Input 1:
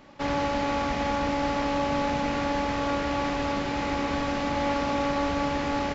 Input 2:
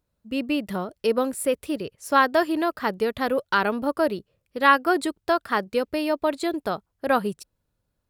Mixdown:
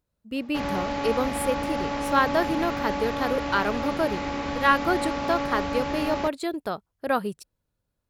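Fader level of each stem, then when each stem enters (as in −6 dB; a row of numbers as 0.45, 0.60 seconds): −2.0, −3.0 decibels; 0.35, 0.00 seconds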